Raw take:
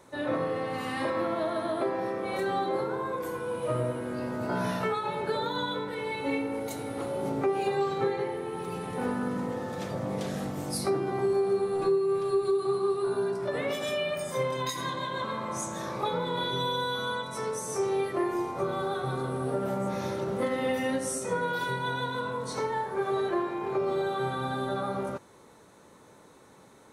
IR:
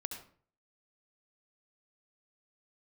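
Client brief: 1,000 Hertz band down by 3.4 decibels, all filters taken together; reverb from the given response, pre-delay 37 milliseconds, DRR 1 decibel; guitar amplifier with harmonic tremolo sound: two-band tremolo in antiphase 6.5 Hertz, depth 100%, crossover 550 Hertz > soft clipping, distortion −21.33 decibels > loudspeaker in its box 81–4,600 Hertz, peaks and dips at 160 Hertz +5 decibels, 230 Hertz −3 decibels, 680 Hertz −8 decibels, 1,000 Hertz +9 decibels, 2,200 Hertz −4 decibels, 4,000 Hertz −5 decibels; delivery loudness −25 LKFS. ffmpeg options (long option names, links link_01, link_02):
-filter_complex "[0:a]equalizer=frequency=1000:width_type=o:gain=-8.5,asplit=2[link_01][link_02];[1:a]atrim=start_sample=2205,adelay=37[link_03];[link_02][link_03]afir=irnorm=-1:irlink=0,volume=0dB[link_04];[link_01][link_04]amix=inputs=2:normalize=0,acrossover=split=550[link_05][link_06];[link_05]aeval=exprs='val(0)*(1-1/2+1/2*cos(2*PI*6.5*n/s))':channel_layout=same[link_07];[link_06]aeval=exprs='val(0)*(1-1/2-1/2*cos(2*PI*6.5*n/s))':channel_layout=same[link_08];[link_07][link_08]amix=inputs=2:normalize=0,asoftclip=threshold=-23.5dB,highpass=81,equalizer=frequency=160:width_type=q:width=4:gain=5,equalizer=frequency=230:width_type=q:width=4:gain=-3,equalizer=frequency=680:width_type=q:width=4:gain=-8,equalizer=frequency=1000:width_type=q:width=4:gain=9,equalizer=frequency=2200:width_type=q:width=4:gain=-4,equalizer=frequency=4000:width_type=q:width=4:gain=-5,lowpass=frequency=4600:width=0.5412,lowpass=frequency=4600:width=1.3066,volume=11.5dB"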